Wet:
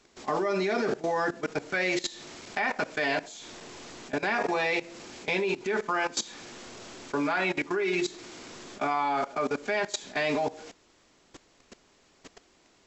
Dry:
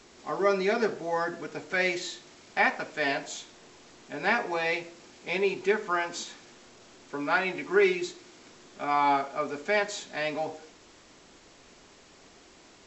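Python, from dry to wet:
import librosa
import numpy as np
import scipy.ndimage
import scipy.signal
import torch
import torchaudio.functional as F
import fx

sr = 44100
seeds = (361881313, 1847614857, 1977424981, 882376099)

y = fx.level_steps(x, sr, step_db=18)
y = F.gain(torch.from_numpy(y), 9.0).numpy()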